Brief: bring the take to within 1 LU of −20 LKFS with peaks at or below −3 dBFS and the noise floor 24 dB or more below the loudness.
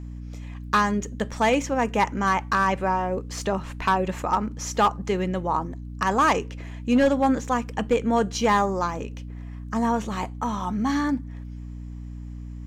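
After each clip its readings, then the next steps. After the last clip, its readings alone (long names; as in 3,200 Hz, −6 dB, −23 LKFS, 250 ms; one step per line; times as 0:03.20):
share of clipped samples 0.5%; peaks flattened at −13.0 dBFS; mains hum 60 Hz; hum harmonics up to 300 Hz; level of the hum −34 dBFS; integrated loudness −24.5 LKFS; sample peak −13.0 dBFS; target loudness −20.0 LKFS
→ clipped peaks rebuilt −13 dBFS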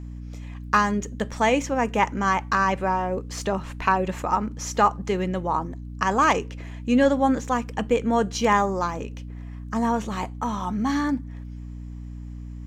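share of clipped samples 0.0%; mains hum 60 Hz; hum harmonics up to 300 Hz; level of the hum −34 dBFS
→ hum removal 60 Hz, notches 5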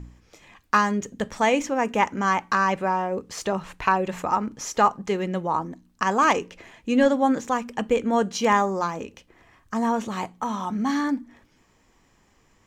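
mains hum none found; integrated loudness −24.0 LKFS; sample peak −6.0 dBFS; target loudness −20.0 LKFS
→ level +4 dB
brickwall limiter −3 dBFS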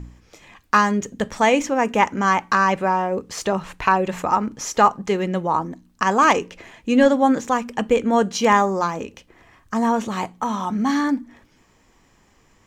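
integrated loudness −20.0 LKFS; sample peak −3.0 dBFS; background noise floor −58 dBFS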